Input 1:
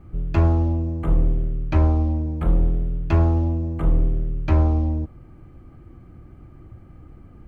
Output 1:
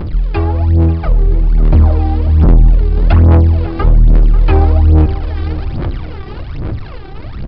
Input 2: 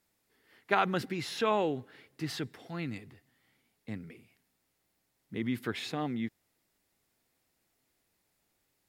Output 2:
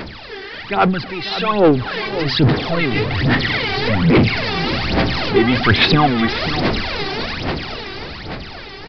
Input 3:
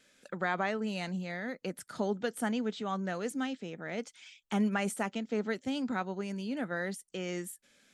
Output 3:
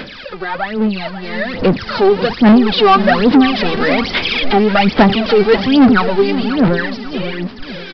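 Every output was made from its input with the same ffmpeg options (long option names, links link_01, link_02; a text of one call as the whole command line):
ffmpeg -i in.wav -filter_complex "[0:a]aeval=exprs='val(0)+0.5*0.0251*sgn(val(0))':channel_layout=same,dynaudnorm=framelen=290:gausssize=13:maxgain=14dB,aphaser=in_gain=1:out_gain=1:delay=2.6:decay=0.77:speed=1.2:type=sinusoidal,aresample=11025,asoftclip=type=tanh:threshold=-7dB,aresample=44100,asplit=2[link_01][link_02];[link_02]adelay=541,lowpass=frequency=1700:poles=1,volume=-11.5dB,asplit=2[link_03][link_04];[link_04]adelay=541,lowpass=frequency=1700:poles=1,volume=0.4,asplit=2[link_05][link_06];[link_06]adelay=541,lowpass=frequency=1700:poles=1,volume=0.4,asplit=2[link_07][link_08];[link_08]adelay=541,lowpass=frequency=1700:poles=1,volume=0.4[link_09];[link_01][link_03][link_05][link_07][link_09]amix=inputs=5:normalize=0,volume=3.5dB" out.wav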